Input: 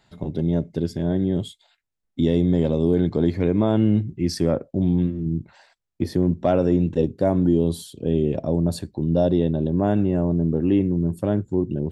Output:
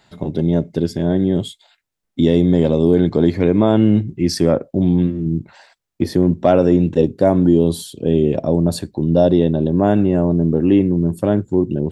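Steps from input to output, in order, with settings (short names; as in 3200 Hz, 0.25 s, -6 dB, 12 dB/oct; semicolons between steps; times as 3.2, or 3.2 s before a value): low shelf 110 Hz -7.5 dB; gain +7 dB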